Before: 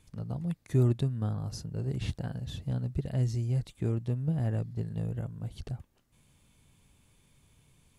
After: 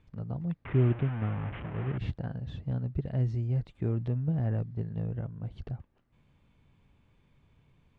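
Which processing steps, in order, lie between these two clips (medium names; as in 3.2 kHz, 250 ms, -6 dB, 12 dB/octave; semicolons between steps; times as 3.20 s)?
0.65–1.98 s: one-bit delta coder 16 kbps, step -33.5 dBFS; low-pass 2.3 kHz 12 dB/octave; 3.74–4.63 s: transient shaper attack 0 dB, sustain +7 dB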